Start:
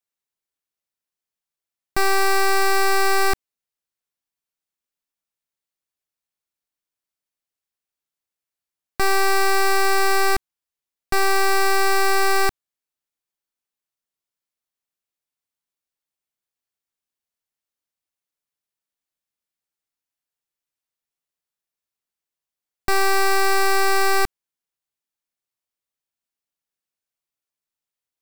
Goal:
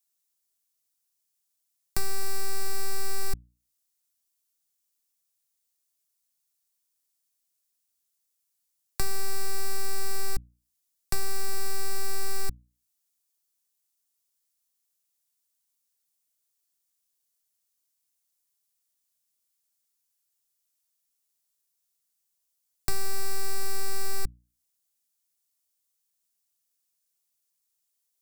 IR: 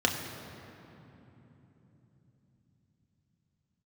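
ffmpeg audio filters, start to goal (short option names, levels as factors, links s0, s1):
-filter_complex "[0:a]bass=f=250:g=2,treble=f=4000:g=15,bandreject=f=60:t=h:w=6,bandreject=f=120:t=h:w=6,bandreject=f=180:t=h:w=6,bandreject=f=240:t=h:w=6,bandreject=f=300:t=h:w=6,acrossover=split=200[s0][s1];[s1]acompressor=threshold=0.0355:ratio=6[s2];[s0][s2]amix=inputs=2:normalize=0,volume=0.75"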